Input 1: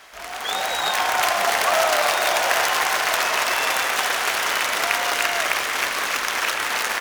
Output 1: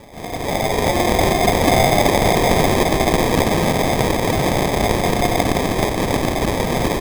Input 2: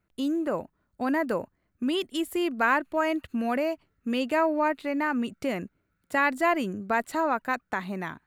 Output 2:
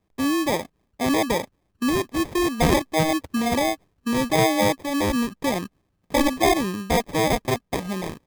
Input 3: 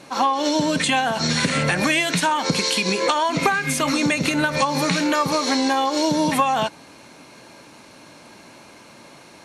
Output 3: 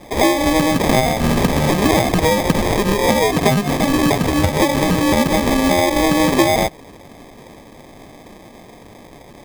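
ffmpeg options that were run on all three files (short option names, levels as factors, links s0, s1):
-af "acrusher=samples=31:mix=1:aa=0.000001,volume=1.78"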